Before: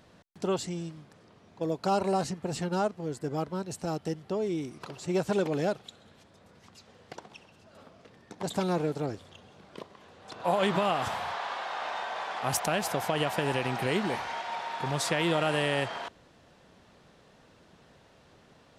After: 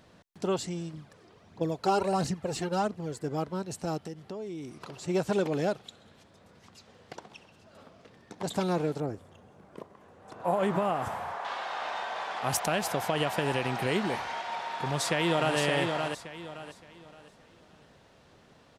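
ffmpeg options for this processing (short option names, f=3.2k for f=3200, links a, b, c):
-filter_complex "[0:a]asettb=1/sr,asplit=3[a][b][c];[a]atrim=end=0.934[d];[b]atrim=start=0.93:end=3.22,asetpts=PTS-STARTPTS,afade=t=in:d=0.004:c=qsin,afade=t=out:st=2.286:d=0.004:c=qsin,aphaser=in_gain=1:out_gain=1:delay=3:decay=0.5:speed=1.5:type=triangular[e];[c]atrim=start=3.216[f];[d][e]acrossfade=d=0.004:c1=hsin:c2=qsin[g];[g][f]acrossfade=d=0.004:c1=qsin:c2=hsin,asettb=1/sr,asplit=3[h][i][j];[h]atrim=end=3.984[k];[i]atrim=start=3.98:end=4.98,asetpts=PTS-STARTPTS,afade=t=in:d=0.004:c=qsin,afade=t=out:st=0.996:d=0.004:c=qsin,acompressor=threshold=-37dB:ratio=3:attack=3.2:release=140:knee=1:detection=peak[l];[j]atrim=start=4.976[m];[k][l]acrossfade=d=0.004:c1=hsin:c2=qsin[n];[n][m]acrossfade=d=0.004:c1=qsin:c2=hsin,asettb=1/sr,asplit=3[o][p][q];[o]atrim=end=9.004[r];[p]atrim=start=9:end=11.45,asetpts=PTS-STARTPTS,afade=t=in:d=0.004:c=qsin,afade=t=out:st=2.446:d=0.004:c=qsin,equalizer=f=3.9k:t=o:w=1.7:g=-13[s];[q]atrim=start=11.446[t];[r][s]acrossfade=d=0.004:c1=hsin:c2=qsin[u];[u][t]acrossfade=d=0.004:c1=qsin:c2=hsin,asplit=2[v][w];[w]afade=t=in:st=14.66:d=0.01,afade=t=out:st=15.57:d=0.01,aecho=0:1:570|1140|1710|2280:0.562341|0.168702|0.0506107|0.0151832[x];[v][x]amix=inputs=2:normalize=0"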